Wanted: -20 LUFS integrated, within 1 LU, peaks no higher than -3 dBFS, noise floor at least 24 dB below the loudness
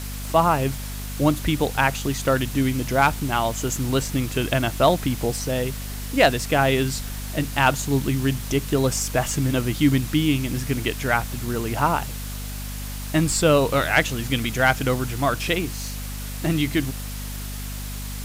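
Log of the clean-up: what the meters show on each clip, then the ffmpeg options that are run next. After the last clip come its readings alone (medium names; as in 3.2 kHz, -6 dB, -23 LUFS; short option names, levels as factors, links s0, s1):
hum 50 Hz; highest harmonic 250 Hz; hum level -30 dBFS; noise floor -32 dBFS; noise floor target -47 dBFS; loudness -23.0 LUFS; peak level -5.0 dBFS; loudness target -20.0 LUFS
-> -af "bandreject=f=50:t=h:w=6,bandreject=f=100:t=h:w=6,bandreject=f=150:t=h:w=6,bandreject=f=200:t=h:w=6,bandreject=f=250:t=h:w=6"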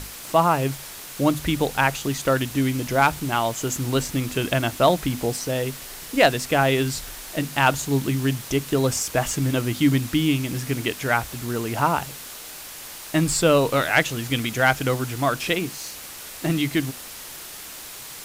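hum not found; noise floor -38 dBFS; noise floor target -47 dBFS
-> -af "afftdn=nr=9:nf=-38"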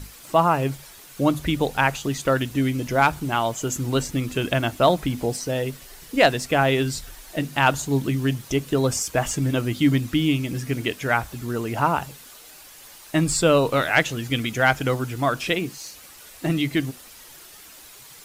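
noise floor -46 dBFS; noise floor target -47 dBFS
-> -af "afftdn=nr=6:nf=-46"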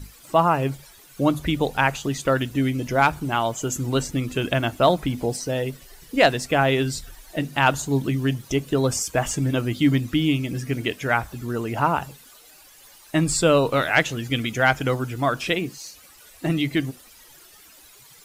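noise floor -50 dBFS; loudness -23.0 LUFS; peak level -5.0 dBFS; loudness target -20.0 LUFS
-> -af "volume=1.41,alimiter=limit=0.708:level=0:latency=1"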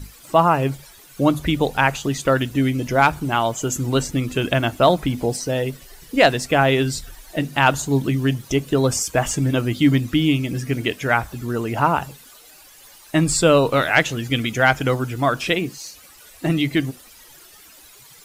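loudness -20.0 LUFS; peak level -3.0 dBFS; noise floor -47 dBFS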